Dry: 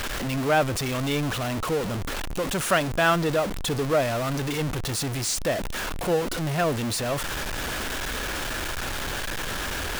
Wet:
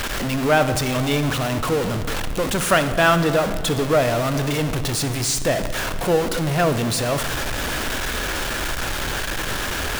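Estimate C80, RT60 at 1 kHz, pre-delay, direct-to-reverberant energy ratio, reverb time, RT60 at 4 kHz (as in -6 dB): 11.5 dB, 2.1 s, 14 ms, 9.5 dB, 2.3 s, 1.5 s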